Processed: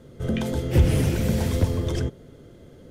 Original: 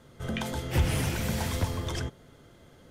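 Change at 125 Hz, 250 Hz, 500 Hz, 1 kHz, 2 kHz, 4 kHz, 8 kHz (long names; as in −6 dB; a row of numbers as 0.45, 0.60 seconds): +7.5, +8.5, +8.0, −1.0, −0.5, 0.0, 0.0 decibels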